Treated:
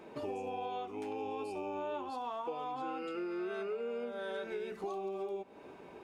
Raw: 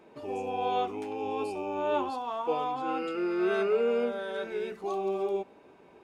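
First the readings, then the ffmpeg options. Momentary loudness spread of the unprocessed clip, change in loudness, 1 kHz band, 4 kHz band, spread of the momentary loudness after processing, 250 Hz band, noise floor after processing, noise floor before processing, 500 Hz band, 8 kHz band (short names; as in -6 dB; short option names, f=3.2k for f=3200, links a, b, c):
8 LU, -8.5 dB, -8.0 dB, -8.0 dB, 3 LU, -8.0 dB, -53 dBFS, -56 dBFS, -9.0 dB, n/a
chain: -af "acompressor=threshold=-40dB:ratio=12,volume=4dB"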